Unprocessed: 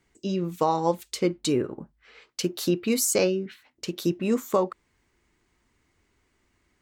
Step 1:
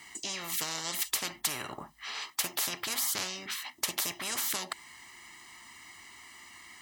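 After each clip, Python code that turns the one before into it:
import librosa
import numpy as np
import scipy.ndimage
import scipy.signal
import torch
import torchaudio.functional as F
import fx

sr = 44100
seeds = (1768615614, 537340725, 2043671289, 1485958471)

y = fx.highpass(x, sr, hz=1500.0, slope=6)
y = y + 0.92 * np.pad(y, (int(1.0 * sr / 1000.0), 0))[:len(y)]
y = fx.spectral_comp(y, sr, ratio=10.0)
y = y * librosa.db_to_amplitude(-1.5)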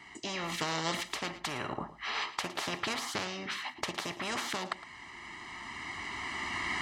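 y = fx.recorder_agc(x, sr, target_db=-16.5, rise_db_per_s=8.2, max_gain_db=30)
y = fx.spacing_loss(y, sr, db_at_10k=23)
y = y + 10.0 ** (-15.0 / 20.0) * np.pad(y, (int(111 * sr / 1000.0), 0))[:len(y)]
y = y * librosa.db_to_amplitude(4.0)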